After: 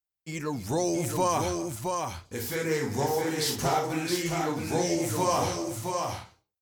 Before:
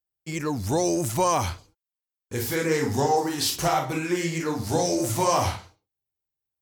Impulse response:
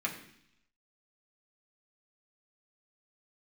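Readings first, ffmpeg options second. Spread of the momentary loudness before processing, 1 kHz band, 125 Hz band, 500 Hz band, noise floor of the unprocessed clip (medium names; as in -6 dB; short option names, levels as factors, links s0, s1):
8 LU, -3.0 dB, -3.5 dB, -2.5 dB, under -85 dBFS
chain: -filter_complex "[0:a]flanger=delay=3.8:depth=2:regen=-67:speed=0.47:shape=sinusoidal,asplit=2[s0][s1];[s1]aecho=0:1:250|669:0.158|0.596[s2];[s0][s2]amix=inputs=2:normalize=0"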